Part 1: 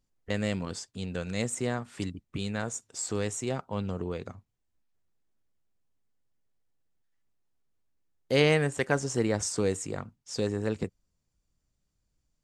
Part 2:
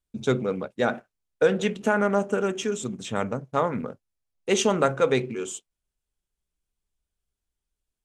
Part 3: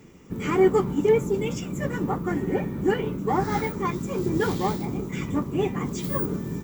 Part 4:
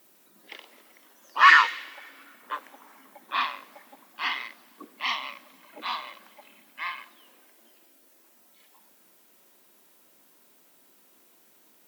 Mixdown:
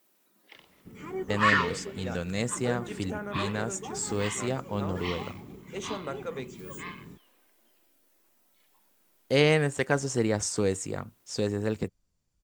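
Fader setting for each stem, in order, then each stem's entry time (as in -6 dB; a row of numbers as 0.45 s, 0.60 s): +1.0 dB, -15.0 dB, -16.5 dB, -8.5 dB; 1.00 s, 1.25 s, 0.55 s, 0.00 s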